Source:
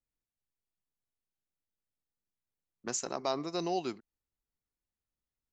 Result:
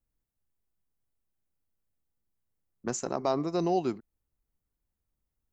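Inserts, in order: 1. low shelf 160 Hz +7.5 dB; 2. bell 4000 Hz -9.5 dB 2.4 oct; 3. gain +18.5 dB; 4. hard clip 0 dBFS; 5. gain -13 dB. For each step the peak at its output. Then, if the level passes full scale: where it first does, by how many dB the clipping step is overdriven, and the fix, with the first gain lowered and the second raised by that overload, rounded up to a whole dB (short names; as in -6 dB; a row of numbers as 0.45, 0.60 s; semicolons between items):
-19.0, -20.5, -2.0, -2.0, -15.0 dBFS; no overload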